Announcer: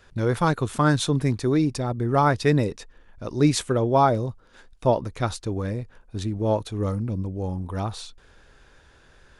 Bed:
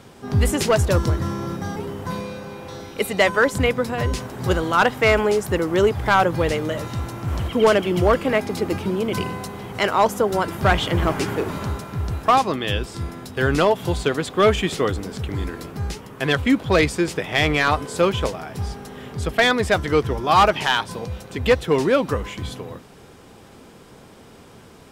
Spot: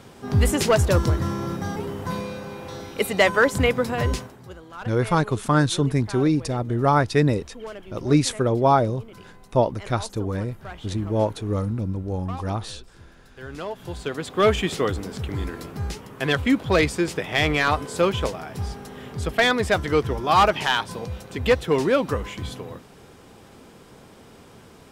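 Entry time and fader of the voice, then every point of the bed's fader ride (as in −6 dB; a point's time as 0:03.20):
4.70 s, +1.0 dB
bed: 0:04.14 −0.5 dB
0:04.49 −21 dB
0:13.28 −21 dB
0:14.45 −2 dB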